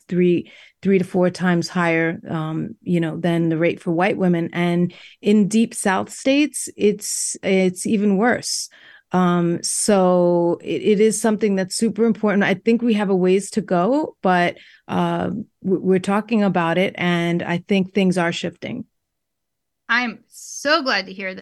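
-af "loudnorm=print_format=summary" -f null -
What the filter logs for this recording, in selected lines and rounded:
Input Integrated:    -19.6 LUFS
Input True Peak:      -5.1 dBTP
Input LRA:             5.3 LU
Input Threshold:     -29.9 LUFS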